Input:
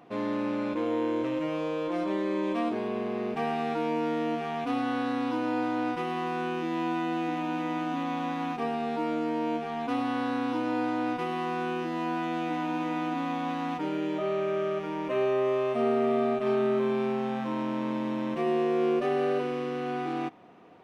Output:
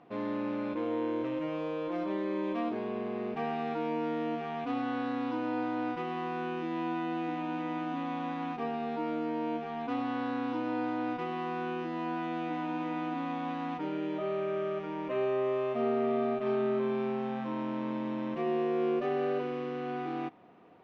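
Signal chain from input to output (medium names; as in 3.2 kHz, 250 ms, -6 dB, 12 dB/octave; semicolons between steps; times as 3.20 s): distance through air 130 m; trim -3.5 dB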